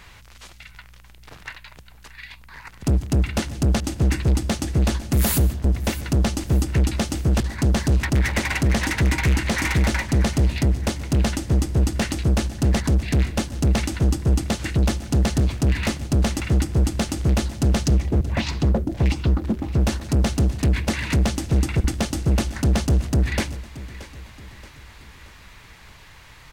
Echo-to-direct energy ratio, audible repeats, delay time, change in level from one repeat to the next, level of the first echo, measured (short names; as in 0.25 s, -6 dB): -16.0 dB, 3, 0.627 s, -6.5 dB, -17.0 dB